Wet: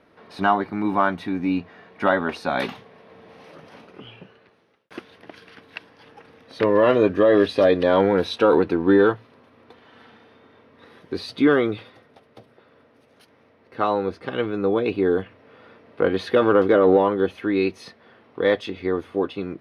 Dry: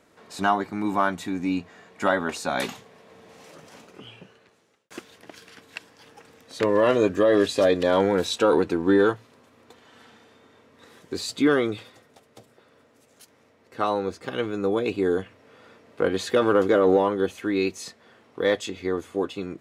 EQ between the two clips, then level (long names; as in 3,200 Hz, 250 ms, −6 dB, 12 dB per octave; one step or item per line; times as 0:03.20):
moving average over 6 samples
+3.0 dB